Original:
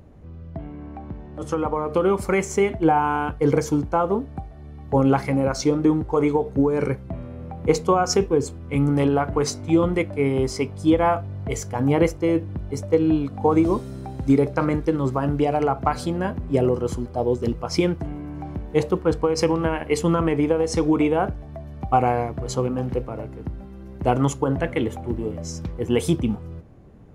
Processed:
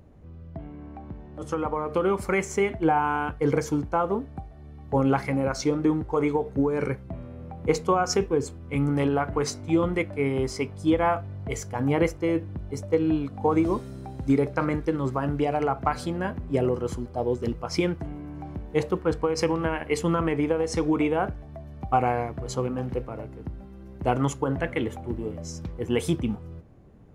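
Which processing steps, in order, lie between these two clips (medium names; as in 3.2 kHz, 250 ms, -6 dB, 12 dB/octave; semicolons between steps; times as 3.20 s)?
dynamic bell 1.8 kHz, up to +4 dB, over -40 dBFS, Q 1.1; trim -4.5 dB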